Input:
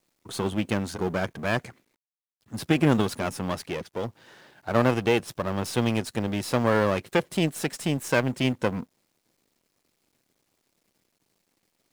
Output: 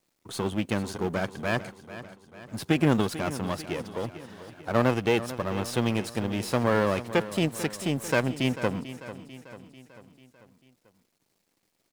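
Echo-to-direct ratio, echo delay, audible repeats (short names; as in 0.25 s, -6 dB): -12.5 dB, 0.443 s, 4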